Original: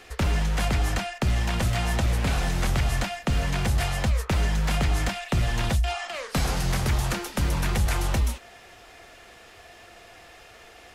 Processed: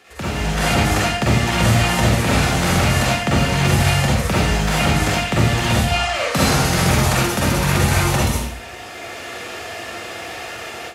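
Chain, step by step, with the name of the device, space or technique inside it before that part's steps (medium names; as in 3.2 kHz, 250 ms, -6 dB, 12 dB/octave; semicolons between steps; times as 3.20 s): far laptop microphone (reverberation RT60 0.65 s, pre-delay 39 ms, DRR -6 dB; high-pass 110 Hz 12 dB/octave; level rider gain up to 15 dB); trim -3 dB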